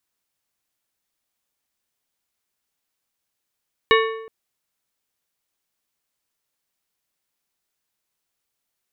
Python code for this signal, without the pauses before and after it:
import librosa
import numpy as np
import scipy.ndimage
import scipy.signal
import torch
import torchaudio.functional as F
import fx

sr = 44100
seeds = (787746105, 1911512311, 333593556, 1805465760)

y = fx.strike_metal(sr, length_s=0.37, level_db=-13, body='plate', hz=446.0, decay_s=0.88, tilt_db=2.0, modes=6)